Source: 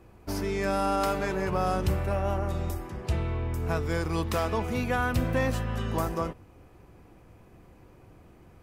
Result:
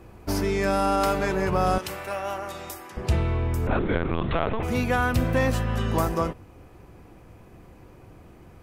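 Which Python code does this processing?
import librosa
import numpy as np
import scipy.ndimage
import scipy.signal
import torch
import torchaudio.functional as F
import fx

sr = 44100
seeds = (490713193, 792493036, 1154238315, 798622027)

p1 = fx.highpass(x, sr, hz=1300.0, slope=6, at=(1.78, 2.97))
p2 = fx.rider(p1, sr, range_db=4, speed_s=0.5)
p3 = p1 + F.gain(torch.from_numpy(p2), -2.5).numpy()
p4 = np.clip(p3, -10.0 ** (-12.5 / 20.0), 10.0 ** (-12.5 / 20.0))
p5 = fx.lpc_vocoder(p4, sr, seeds[0], excitation='pitch_kept', order=10, at=(3.67, 4.63))
y = fx.transformer_sat(p5, sr, knee_hz=100.0)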